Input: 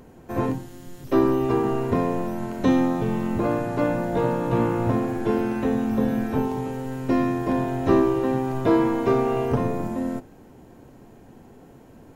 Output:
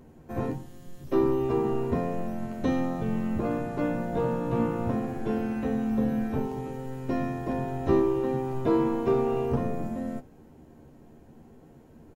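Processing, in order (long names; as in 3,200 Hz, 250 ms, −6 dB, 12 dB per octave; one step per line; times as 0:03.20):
low-shelf EQ 450 Hz +5.5 dB
double-tracking delay 13 ms −6 dB
level −9 dB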